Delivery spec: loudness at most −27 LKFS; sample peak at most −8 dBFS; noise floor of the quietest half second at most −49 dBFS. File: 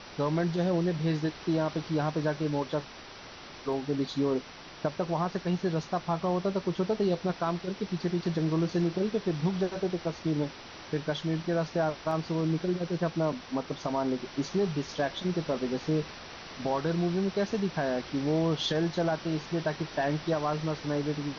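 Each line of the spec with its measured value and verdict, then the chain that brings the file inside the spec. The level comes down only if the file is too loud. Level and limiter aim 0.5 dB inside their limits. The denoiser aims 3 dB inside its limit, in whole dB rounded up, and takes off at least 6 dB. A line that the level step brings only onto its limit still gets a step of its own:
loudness −30.5 LKFS: in spec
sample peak −17.0 dBFS: in spec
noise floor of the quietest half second −46 dBFS: out of spec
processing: broadband denoise 6 dB, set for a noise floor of −46 dBFS

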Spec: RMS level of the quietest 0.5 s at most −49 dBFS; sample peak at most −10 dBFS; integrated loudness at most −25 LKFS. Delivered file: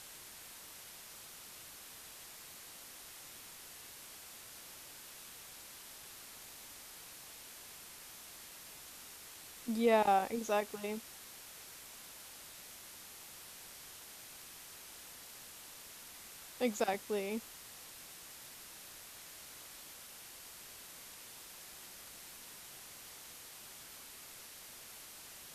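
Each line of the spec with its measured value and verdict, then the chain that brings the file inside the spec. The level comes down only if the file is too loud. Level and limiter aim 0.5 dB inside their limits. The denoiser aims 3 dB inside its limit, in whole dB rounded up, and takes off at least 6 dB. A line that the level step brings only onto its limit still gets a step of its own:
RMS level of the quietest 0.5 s −53 dBFS: in spec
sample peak −18.0 dBFS: in spec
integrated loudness −43.0 LKFS: in spec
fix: no processing needed

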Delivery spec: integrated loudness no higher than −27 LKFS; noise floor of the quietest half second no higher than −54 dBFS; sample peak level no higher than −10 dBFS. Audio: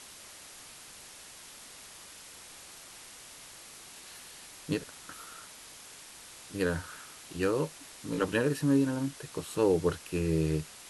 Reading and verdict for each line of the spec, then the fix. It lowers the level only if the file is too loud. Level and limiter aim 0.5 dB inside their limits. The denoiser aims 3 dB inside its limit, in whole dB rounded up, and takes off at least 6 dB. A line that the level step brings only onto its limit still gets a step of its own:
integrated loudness −31.0 LKFS: in spec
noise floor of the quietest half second −50 dBFS: out of spec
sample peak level −15.0 dBFS: in spec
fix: broadband denoise 7 dB, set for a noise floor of −50 dBFS

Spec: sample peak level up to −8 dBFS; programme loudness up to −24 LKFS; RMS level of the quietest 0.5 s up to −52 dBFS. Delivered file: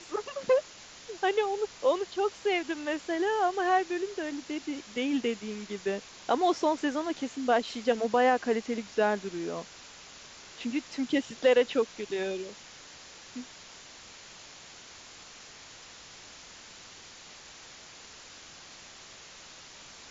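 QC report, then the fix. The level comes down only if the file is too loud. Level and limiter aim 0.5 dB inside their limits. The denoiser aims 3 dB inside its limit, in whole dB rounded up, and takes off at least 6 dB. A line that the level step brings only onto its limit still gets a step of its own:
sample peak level −12.5 dBFS: in spec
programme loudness −29.5 LKFS: in spec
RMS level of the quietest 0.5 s −50 dBFS: out of spec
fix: broadband denoise 6 dB, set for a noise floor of −50 dBFS

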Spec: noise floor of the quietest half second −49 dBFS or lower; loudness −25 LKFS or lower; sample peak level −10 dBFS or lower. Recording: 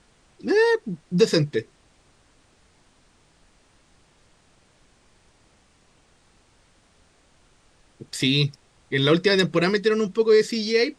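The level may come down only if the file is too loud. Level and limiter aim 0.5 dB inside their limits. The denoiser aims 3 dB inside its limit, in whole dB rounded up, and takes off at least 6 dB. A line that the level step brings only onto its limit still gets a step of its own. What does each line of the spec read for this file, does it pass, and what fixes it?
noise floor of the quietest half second −60 dBFS: in spec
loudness −21.5 LKFS: out of spec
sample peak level −6.0 dBFS: out of spec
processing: level −4 dB
brickwall limiter −10.5 dBFS

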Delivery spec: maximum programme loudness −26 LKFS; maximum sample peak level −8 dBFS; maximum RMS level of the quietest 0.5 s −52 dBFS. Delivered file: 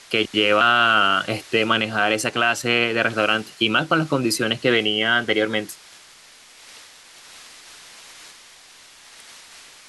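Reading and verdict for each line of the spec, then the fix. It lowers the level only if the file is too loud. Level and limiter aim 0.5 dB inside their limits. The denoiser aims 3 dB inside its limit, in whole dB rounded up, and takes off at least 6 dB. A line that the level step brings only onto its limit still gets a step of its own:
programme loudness −19.0 LKFS: out of spec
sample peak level −5.5 dBFS: out of spec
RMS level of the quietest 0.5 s −48 dBFS: out of spec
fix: level −7.5 dB

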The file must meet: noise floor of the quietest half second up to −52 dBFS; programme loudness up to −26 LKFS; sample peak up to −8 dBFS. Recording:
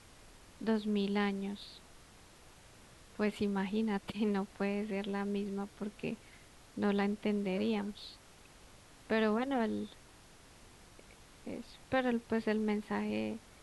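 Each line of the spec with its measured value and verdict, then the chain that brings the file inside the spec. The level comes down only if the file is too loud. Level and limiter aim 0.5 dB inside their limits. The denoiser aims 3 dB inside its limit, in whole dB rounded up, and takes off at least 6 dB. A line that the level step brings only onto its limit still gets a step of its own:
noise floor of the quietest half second −58 dBFS: in spec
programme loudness −35.5 LKFS: in spec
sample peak −20.5 dBFS: in spec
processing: no processing needed

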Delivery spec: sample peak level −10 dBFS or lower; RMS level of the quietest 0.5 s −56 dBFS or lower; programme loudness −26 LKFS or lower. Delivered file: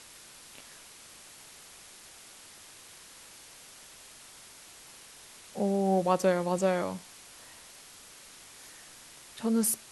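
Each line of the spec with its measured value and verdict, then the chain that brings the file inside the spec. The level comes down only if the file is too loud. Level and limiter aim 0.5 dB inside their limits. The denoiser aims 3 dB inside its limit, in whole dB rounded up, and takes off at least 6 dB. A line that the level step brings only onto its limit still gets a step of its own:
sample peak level −12.5 dBFS: in spec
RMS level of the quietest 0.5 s −52 dBFS: out of spec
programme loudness −29.0 LKFS: in spec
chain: broadband denoise 7 dB, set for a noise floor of −52 dBFS

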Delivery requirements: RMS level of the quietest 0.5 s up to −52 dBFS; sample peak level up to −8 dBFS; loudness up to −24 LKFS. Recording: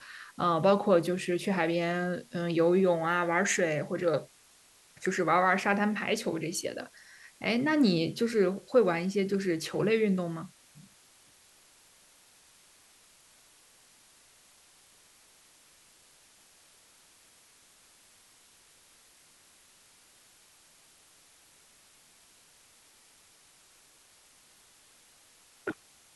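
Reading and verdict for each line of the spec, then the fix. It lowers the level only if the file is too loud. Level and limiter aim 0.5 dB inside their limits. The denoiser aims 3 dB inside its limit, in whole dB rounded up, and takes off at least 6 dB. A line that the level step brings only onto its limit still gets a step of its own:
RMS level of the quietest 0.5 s −61 dBFS: in spec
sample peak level −11.5 dBFS: in spec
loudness −28.5 LKFS: in spec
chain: no processing needed

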